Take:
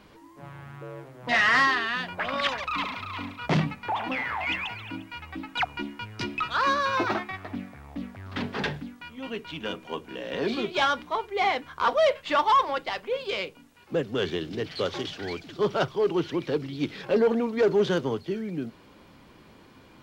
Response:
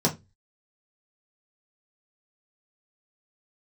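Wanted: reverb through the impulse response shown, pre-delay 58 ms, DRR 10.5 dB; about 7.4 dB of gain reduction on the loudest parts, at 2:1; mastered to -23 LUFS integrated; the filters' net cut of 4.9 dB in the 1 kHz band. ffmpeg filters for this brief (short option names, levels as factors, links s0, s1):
-filter_complex "[0:a]equalizer=f=1000:t=o:g=-6,acompressor=threshold=0.0224:ratio=2,asplit=2[s0][s1];[1:a]atrim=start_sample=2205,adelay=58[s2];[s1][s2]afir=irnorm=-1:irlink=0,volume=0.075[s3];[s0][s3]amix=inputs=2:normalize=0,volume=3.16"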